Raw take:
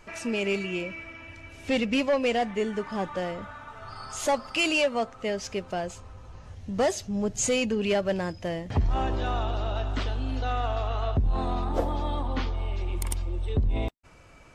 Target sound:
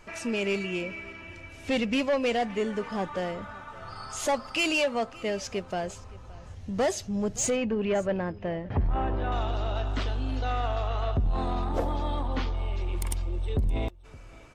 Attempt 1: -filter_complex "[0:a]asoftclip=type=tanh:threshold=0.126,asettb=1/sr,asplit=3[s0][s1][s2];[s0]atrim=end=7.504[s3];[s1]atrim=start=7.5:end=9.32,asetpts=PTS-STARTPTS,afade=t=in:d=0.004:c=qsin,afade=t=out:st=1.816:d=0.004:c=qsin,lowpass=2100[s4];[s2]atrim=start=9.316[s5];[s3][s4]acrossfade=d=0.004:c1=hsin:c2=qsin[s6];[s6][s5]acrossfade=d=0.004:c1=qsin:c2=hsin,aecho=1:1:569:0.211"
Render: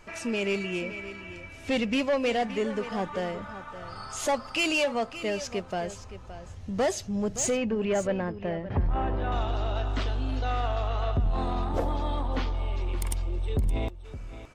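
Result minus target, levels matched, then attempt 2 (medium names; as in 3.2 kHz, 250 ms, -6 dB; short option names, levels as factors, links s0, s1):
echo-to-direct +8.5 dB
-filter_complex "[0:a]asoftclip=type=tanh:threshold=0.126,asettb=1/sr,asplit=3[s0][s1][s2];[s0]atrim=end=7.504[s3];[s1]atrim=start=7.5:end=9.32,asetpts=PTS-STARTPTS,afade=t=in:d=0.004:c=qsin,afade=t=out:st=1.816:d=0.004:c=qsin,lowpass=2100[s4];[s2]atrim=start=9.316[s5];[s3][s4]acrossfade=d=0.004:c1=hsin:c2=qsin[s6];[s6][s5]acrossfade=d=0.004:c1=qsin:c2=hsin,aecho=1:1:569:0.0794"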